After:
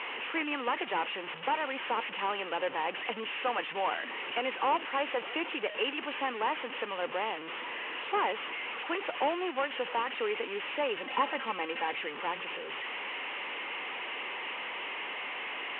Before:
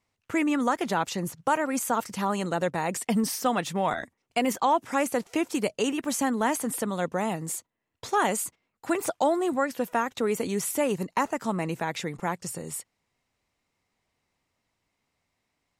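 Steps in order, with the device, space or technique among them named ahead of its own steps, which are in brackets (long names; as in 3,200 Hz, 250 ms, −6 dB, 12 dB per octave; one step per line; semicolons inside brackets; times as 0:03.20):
digital answering machine (band-pass filter 390–3,300 Hz; linear delta modulator 16 kbit/s, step −31.5 dBFS; loudspeaker in its box 410–3,200 Hz, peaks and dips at 660 Hz −8 dB, 1,400 Hz −4 dB, 2,900 Hz +9 dB)
0:10.97–0:11.92: comb filter 3.8 ms, depth 58%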